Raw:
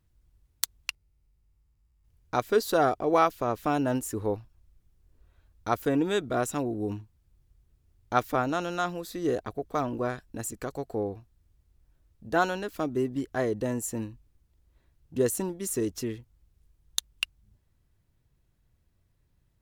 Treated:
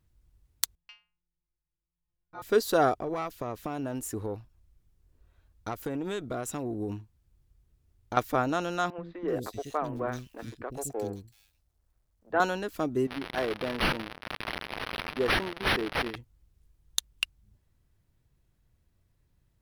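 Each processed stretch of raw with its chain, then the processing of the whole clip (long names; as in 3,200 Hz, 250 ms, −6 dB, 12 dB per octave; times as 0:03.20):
0:00.75–0:02.42: high-frequency loss of the air 270 metres + stiff-string resonator 170 Hz, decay 0.43 s, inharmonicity 0.002
0:02.99–0:08.17: tube saturation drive 15 dB, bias 0.4 + downward compressor 12 to 1, threshold −28 dBFS
0:08.90–0:12.40: mu-law and A-law mismatch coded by A + three-band delay without the direct sound mids, lows, highs 80/380 ms, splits 310/2,600 Hz
0:13.07–0:16.16: spike at every zero crossing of −21 dBFS + high-pass filter 460 Hz 6 dB per octave + linearly interpolated sample-rate reduction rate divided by 6×
whole clip: no processing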